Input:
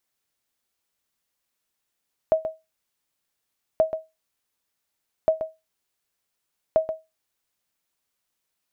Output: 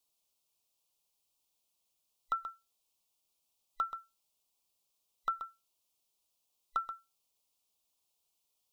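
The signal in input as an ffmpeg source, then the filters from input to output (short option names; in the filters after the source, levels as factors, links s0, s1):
-f lavfi -i "aevalsrc='0.299*(sin(2*PI*638*mod(t,1.48))*exp(-6.91*mod(t,1.48)/0.22)+0.316*sin(2*PI*638*max(mod(t,1.48)-0.13,0))*exp(-6.91*max(mod(t,1.48)-0.13,0)/0.22))':d=5.92:s=44100"
-af "afftfilt=real='real(if(between(b,1,1012),(2*floor((b-1)/92)+1)*92-b,b),0)':imag='imag(if(between(b,1,1012),(2*floor((b-1)/92)+1)*92-b,b),0)*if(between(b,1,1012),-1,1)':win_size=2048:overlap=0.75,asuperstop=centerf=1700:order=4:qfactor=1.1,equalizer=f=170:w=0.35:g=-6.5"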